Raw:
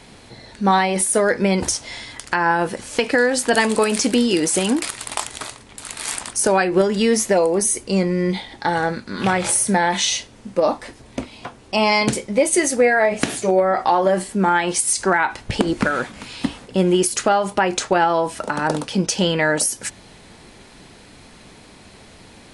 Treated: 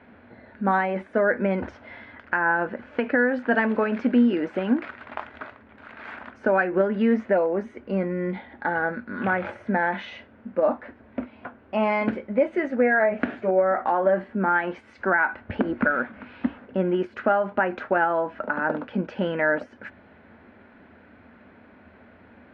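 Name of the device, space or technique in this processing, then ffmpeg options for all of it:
bass cabinet: -af "highpass=81,equalizer=f=82:t=q:w=4:g=8,equalizer=f=140:t=q:w=4:g=-10,equalizer=f=240:t=q:w=4:g=9,equalizer=f=600:t=q:w=4:g=6,equalizer=f=1.5k:t=q:w=4:g=9,lowpass=f=2.3k:w=0.5412,lowpass=f=2.3k:w=1.3066,volume=-8dB"

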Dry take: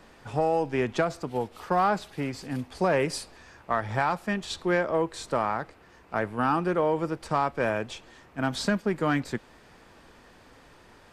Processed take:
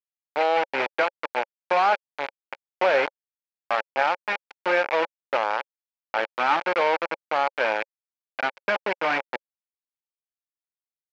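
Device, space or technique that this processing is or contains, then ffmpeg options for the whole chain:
hand-held game console: -af "acrusher=bits=3:mix=0:aa=0.000001,highpass=410,equalizer=f=550:t=q:w=4:g=8,equalizer=f=860:t=q:w=4:g=9,equalizer=f=1.5k:t=q:w=4:g=6,equalizer=f=2.3k:t=q:w=4:g=8,equalizer=f=3.7k:t=q:w=4:g=-4,lowpass=f=4.1k:w=0.5412,lowpass=f=4.1k:w=1.3066,volume=-2dB"

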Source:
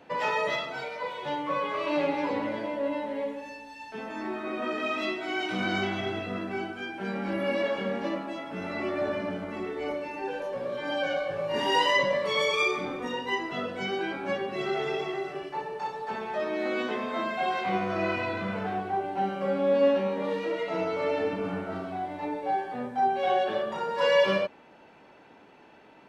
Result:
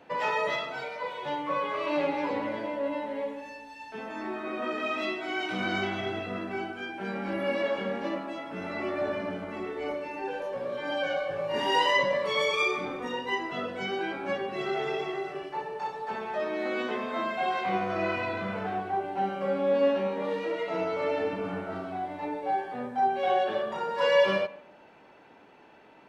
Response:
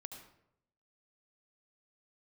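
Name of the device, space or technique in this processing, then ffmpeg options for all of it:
filtered reverb send: -filter_complex "[0:a]asplit=2[a][b];[b]highpass=300,lowpass=3.7k[c];[1:a]atrim=start_sample=2205[d];[c][d]afir=irnorm=-1:irlink=0,volume=-7.5dB[e];[a][e]amix=inputs=2:normalize=0,volume=-2dB"

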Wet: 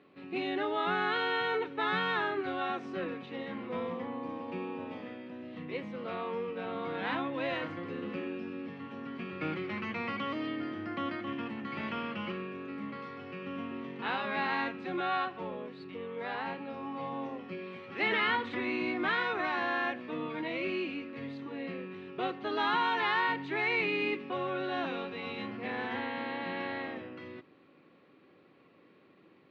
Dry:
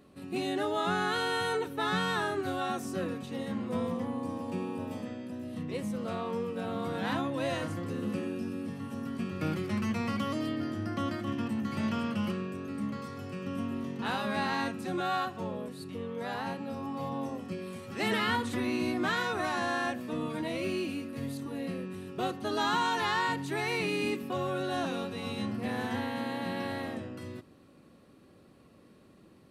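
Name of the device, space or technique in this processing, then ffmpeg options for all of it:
kitchen radio: -af "highpass=210,equalizer=f=220:t=q:w=4:g=-7,equalizer=f=620:t=q:w=4:g=-4,equalizer=f=2.2k:t=q:w=4:g=6,lowpass=f=3.6k:w=0.5412,lowpass=f=3.6k:w=1.3066"

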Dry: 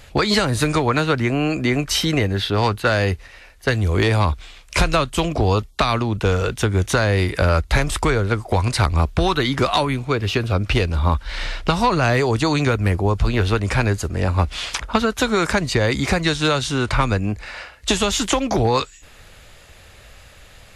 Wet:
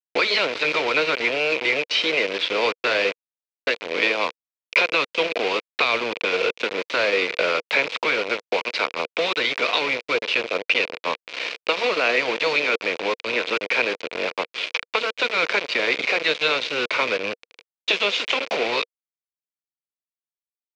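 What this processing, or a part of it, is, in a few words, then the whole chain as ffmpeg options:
hand-held game console: -filter_complex "[0:a]acrossover=split=6400[a][b];[b]acompressor=threshold=-40dB:ratio=4:attack=1:release=60[c];[a][c]amix=inputs=2:normalize=0,afftfilt=real='re*lt(hypot(re,im),0.891)':imag='im*lt(hypot(re,im),0.891)':win_size=1024:overlap=0.75,lowshelf=f=300:g=-5.5,aecho=1:1:365:0.119,acrusher=bits=3:mix=0:aa=0.000001,highpass=420,equalizer=f=480:t=q:w=4:g=8,equalizer=f=800:t=q:w=4:g=-7,equalizer=f=1.2k:t=q:w=4:g=-4,equalizer=f=1.7k:t=q:w=4:g=-4,equalizer=f=2.4k:t=q:w=4:g=9,lowpass=f=4.5k:w=0.5412,lowpass=f=4.5k:w=1.3066"

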